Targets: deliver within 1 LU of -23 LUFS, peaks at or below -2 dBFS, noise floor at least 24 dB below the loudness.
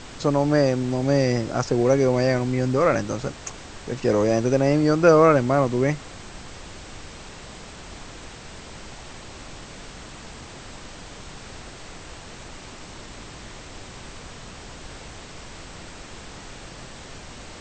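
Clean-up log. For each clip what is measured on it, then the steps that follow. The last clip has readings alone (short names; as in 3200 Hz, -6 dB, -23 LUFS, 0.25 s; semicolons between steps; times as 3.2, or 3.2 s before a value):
noise floor -41 dBFS; noise floor target -45 dBFS; loudness -20.5 LUFS; peak -3.0 dBFS; loudness target -23.0 LUFS
-> noise print and reduce 6 dB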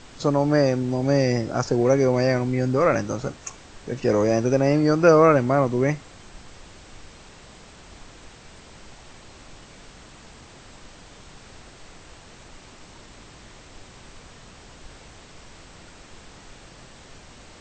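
noise floor -47 dBFS; loudness -21.0 LUFS; peak -3.0 dBFS; loudness target -23.0 LUFS
-> gain -2 dB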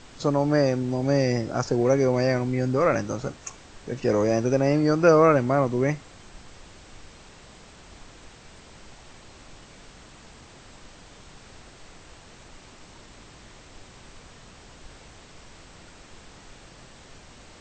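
loudness -23.0 LUFS; peak -5.0 dBFS; noise floor -49 dBFS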